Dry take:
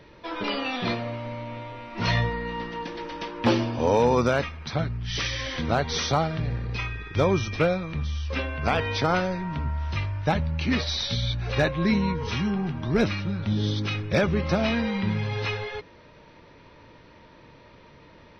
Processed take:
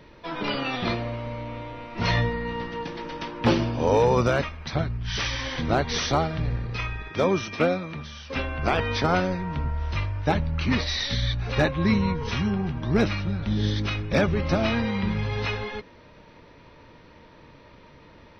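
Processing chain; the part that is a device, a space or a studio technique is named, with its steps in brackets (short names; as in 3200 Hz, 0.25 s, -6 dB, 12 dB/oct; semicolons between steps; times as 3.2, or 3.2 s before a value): octave pedal (harmoniser -12 st -7 dB); 7.1–8.36 HPF 180 Hz 12 dB/oct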